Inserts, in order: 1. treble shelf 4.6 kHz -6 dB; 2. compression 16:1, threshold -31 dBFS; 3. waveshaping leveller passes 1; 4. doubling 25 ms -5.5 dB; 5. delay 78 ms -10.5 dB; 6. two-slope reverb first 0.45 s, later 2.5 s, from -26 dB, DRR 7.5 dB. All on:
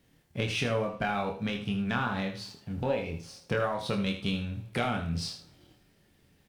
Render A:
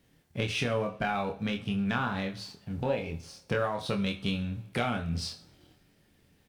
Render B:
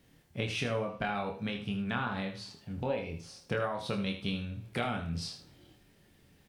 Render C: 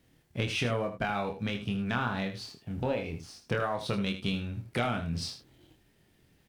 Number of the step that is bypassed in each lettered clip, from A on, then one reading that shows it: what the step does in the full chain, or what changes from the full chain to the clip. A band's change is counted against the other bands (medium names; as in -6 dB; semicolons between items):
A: 5, echo-to-direct -5.5 dB to -7.5 dB; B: 3, crest factor change +3.0 dB; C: 6, echo-to-direct -5.5 dB to -10.5 dB